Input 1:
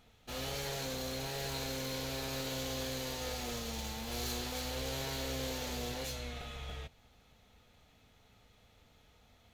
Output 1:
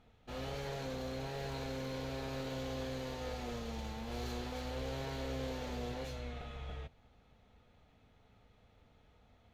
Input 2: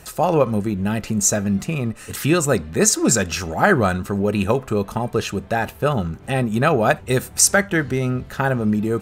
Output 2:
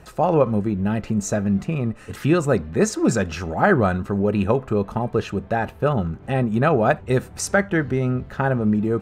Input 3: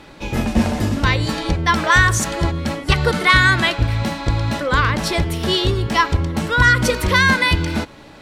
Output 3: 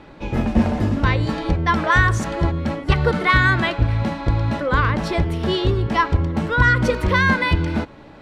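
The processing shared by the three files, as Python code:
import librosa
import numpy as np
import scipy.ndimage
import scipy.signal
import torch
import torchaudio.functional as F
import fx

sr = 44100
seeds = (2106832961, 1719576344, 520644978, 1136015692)

y = fx.lowpass(x, sr, hz=1500.0, slope=6)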